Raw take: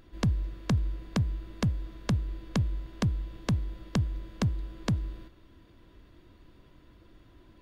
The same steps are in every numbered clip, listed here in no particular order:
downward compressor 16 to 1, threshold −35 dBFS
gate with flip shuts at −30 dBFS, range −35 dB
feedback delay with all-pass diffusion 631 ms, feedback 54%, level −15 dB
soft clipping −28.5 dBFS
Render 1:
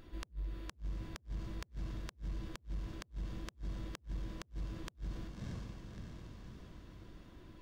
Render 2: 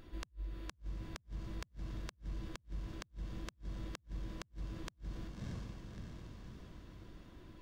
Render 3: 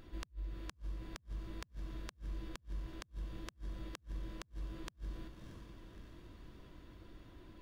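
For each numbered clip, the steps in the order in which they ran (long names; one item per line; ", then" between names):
feedback delay with all-pass diffusion, then soft clipping, then downward compressor, then gate with flip
feedback delay with all-pass diffusion, then downward compressor, then gate with flip, then soft clipping
downward compressor, then soft clipping, then feedback delay with all-pass diffusion, then gate with flip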